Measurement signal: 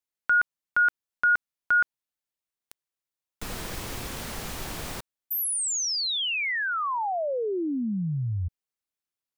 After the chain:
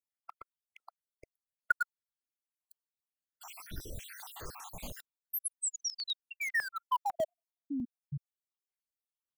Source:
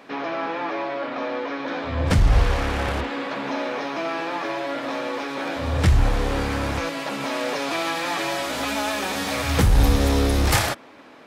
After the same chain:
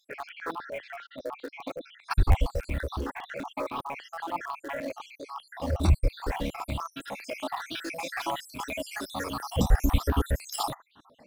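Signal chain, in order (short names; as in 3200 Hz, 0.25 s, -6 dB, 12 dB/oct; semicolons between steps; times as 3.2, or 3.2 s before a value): random spectral dropouts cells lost 70%; dynamic EQ 1100 Hz, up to +3 dB, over -39 dBFS, Q 0.84; in parallel at -10.5 dB: sample gate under -24 dBFS; on the sum: stuck buffer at 2.31, samples 512, times 2; step phaser 10 Hz 390–2000 Hz; gain -3 dB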